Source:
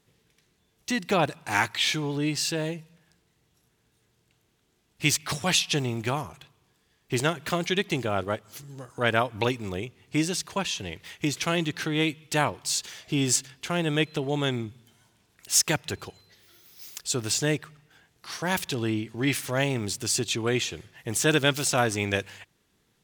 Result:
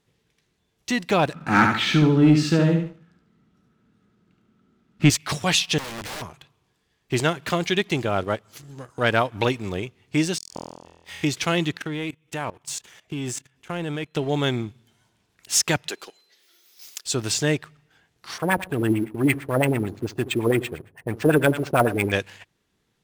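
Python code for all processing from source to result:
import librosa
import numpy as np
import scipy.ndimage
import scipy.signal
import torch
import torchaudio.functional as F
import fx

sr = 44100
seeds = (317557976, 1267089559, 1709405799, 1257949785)

y = fx.chain(x, sr, fx.lowpass(hz=2700.0, slope=6),
    fx.small_body(hz=(210.0, 1300.0), ring_ms=30, db=16),
    fx.echo_feedback(ms=72, feedback_pct=33, wet_db=-5), at=(1.33, 5.1))
y = fx.chain(y, sr, fx.air_absorb(metres=120.0),
    fx.overflow_wrap(gain_db=31.0), at=(5.78, 6.22))
y = fx.chain(y, sr, fx.gate_flip(shuts_db=-24.0, range_db=-42),
    fx.room_flutter(wall_m=4.1, rt60_s=1.3), at=(10.38, 11.24))
y = fx.chain(y, sr, fx.peak_eq(hz=4500.0, db=-9.5, octaves=0.62),
    fx.level_steps(step_db=16), at=(11.77, 14.15))
y = fx.chain(y, sr, fx.ladder_highpass(hz=240.0, resonance_pct=20),
    fx.high_shelf(hz=2100.0, db=9.0), at=(15.88, 17.06))
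y = fx.chain(y, sr, fx.echo_feedback(ms=71, feedback_pct=46, wet_db=-15.0),
    fx.filter_lfo_lowpass(shape='sine', hz=8.9, low_hz=330.0, high_hz=2500.0, q=1.9),
    fx.sample_hold(seeds[0], rate_hz=11000.0, jitter_pct=0), at=(18.38, 22.12))
y = fx.high_shelf(y, sr, hz=8700.0, db=-7.0)
y = fx.leveller(y, sr, passes=1)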